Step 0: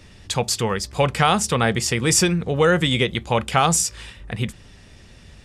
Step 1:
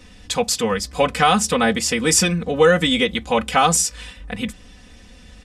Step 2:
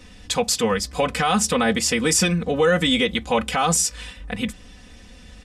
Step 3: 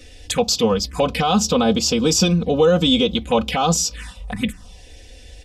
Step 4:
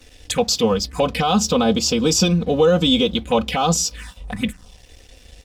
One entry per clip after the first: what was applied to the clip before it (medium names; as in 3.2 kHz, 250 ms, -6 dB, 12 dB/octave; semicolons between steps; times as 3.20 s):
comb 4 ms, depth 97%; trim -1 dB
peak limiter -9 dBFS, peak gain reduction 7.5 dB
touch-sensitive phaser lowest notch 160 Hz, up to 1.9 kHz, full sweep at -19 dBFS; trim +4.5 dB
crossover distortion -47 dBFS